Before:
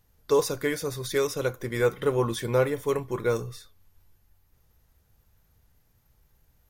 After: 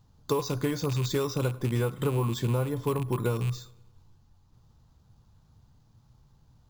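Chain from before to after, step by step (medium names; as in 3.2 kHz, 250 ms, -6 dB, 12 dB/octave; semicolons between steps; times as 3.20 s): rattle on loud lows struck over -35 dBFS, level -26 dBFS; graphic EQ 125/250/500/1000/2000/4000/8000 Hz +11/+6/-3/+8/-9/+4/+9 dB; compression 12:1, threshold -23 dBFS, peak gain reduction 11 dB; on a send: filtered feedback delay 105 ms, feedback 54%, low-pass 4.2 kHz, level -23 dB; on the sum: careless resampling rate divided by 4×, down filtered, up hold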